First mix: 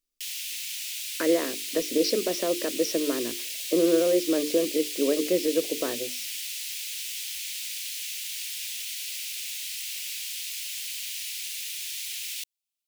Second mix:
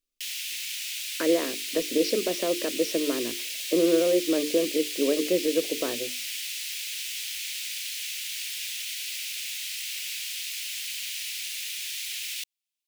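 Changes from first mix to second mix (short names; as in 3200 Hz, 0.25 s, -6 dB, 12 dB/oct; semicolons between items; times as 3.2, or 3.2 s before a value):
background +5.5 dB; master: add high shelf 3700 Hz -7 dB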